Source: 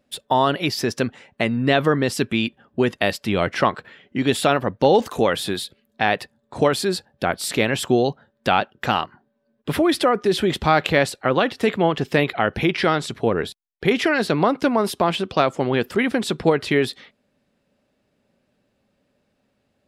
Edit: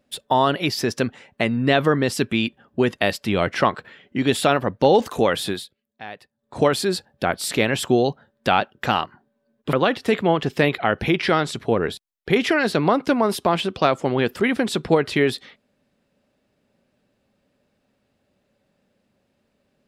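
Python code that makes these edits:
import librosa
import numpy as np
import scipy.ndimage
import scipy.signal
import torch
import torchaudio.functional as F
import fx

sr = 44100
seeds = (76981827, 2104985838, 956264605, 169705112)

y = fx.edit(x, sr, fx.fade_down_up(start_s=5.49, length_s=1.1, db=-16.5, fade_s=0.22),
    fx.cut(start_s=9.73, length_s=1.55), tone=tone)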